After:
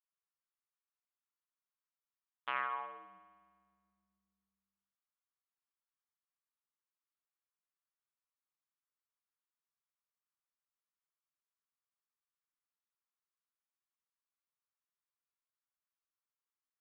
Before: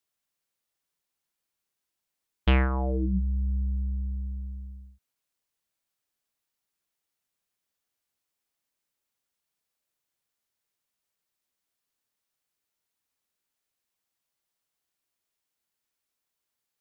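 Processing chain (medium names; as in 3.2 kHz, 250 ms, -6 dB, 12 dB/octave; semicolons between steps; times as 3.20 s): ladder band-pass 1.3 kHz, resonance 50%; reverberation RT60 1.7 s, pre-delay 66 ms, DRR 5.5 dB; upward expansion 1.5:1, over -54 dBFS; trim +4.5 dB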